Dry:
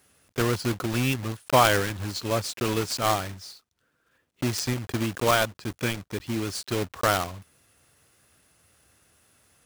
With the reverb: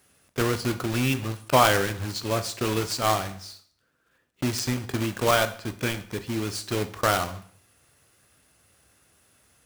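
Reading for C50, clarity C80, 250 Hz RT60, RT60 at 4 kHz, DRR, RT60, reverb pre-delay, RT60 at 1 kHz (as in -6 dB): 14.5 dB, 17.5 dB, 0.55 s, 0.55 s, 9.5 dB, 0.55 s, 6 ms, 0.55 s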